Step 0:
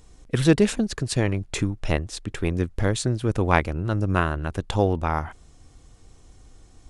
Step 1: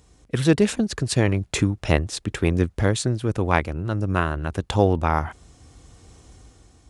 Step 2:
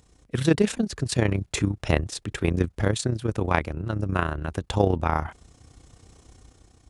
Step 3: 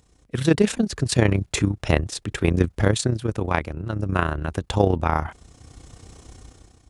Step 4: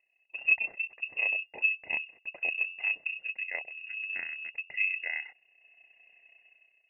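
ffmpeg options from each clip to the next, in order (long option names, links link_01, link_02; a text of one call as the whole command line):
ffmpeg -i in.wav -af "highpass=frequency=44:width=0.5412,highpass=frequency=44:width=1.3066,dynaudnorm=framelen=220:gausssize=7:maxgain=8dB,volume=-1dB" out.wav
ffmpeg -i in.wav -af "tremolo=f=31:d=0.667" out.wav
ffmpeg -i in.wav -af "dynaudnorm=framelen=130:gausssize=7:maxgain=8dB,volume=-1dB" out.wav
ffmpeg -i in.wav -filter_complex "[0:a]asplit=3[link_01][link_02][link_03];[link_01]bandpass=frequency=300:width_type=q:width=8,volume=0dB[link_04];[link_02]bandpass=frequency=870:width_type=q:width=8,volume=-6dB[link_05];[link_03]bandpass=frequency=2240:width_type=q:width=8,volume=-9dB[link_06];[link_04][link_05][link_06]amix=inputs=3:normalize=0,bandreject=frequency=89.95:width_type=h:width=4,bandreject=frequency=179.9:width_type=h:width=4,bandreject=frequency=269.85:width_type=h:width=4,lowpass=frequency=2500:width_type=q:width=0.5098,lowpass=frequency=2500:width_type=q:width=0.6013,lowpass=frequency=2500:width_type=q:width=0.9,lowpass=frequency=2500:width_type=q:width=2.563,afreqshift=-2900" out.wav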